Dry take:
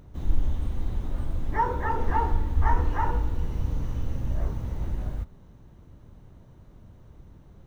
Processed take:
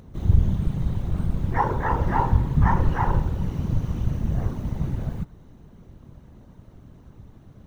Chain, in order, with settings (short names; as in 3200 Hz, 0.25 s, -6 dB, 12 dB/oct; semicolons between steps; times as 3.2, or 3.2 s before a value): whisperiser; gain +3 dB